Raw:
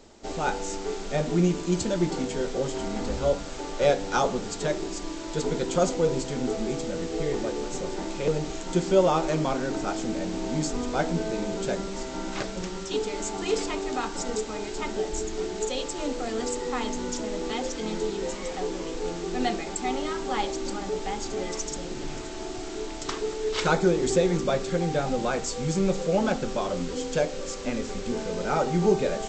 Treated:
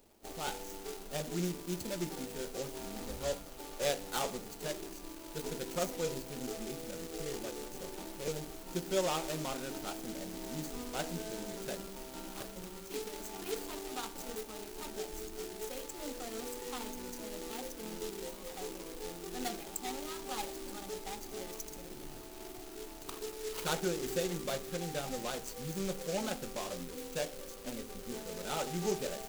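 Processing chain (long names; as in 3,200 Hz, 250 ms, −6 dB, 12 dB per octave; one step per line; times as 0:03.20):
running median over 25 samples
first-order pre-emphasis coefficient 0.9
level +6.5 dB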